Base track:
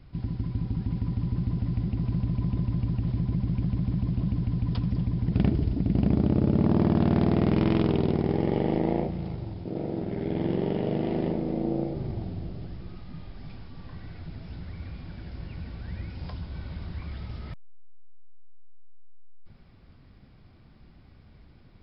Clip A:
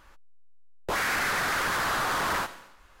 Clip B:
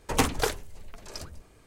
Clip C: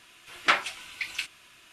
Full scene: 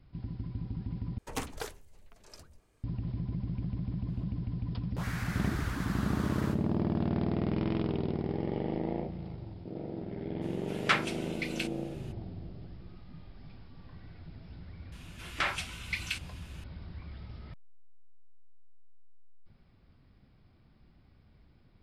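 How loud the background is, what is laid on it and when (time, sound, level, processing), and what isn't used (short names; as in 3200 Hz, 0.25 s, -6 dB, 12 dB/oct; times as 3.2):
base track -8 dB
1.18 replace with B -12.5 dB
4.08 add A -14.5 dB
10.41 add C -4.5 dB, fades 0.02 s
14.92 add C -1.5 dB + limiter -16.5 dBFS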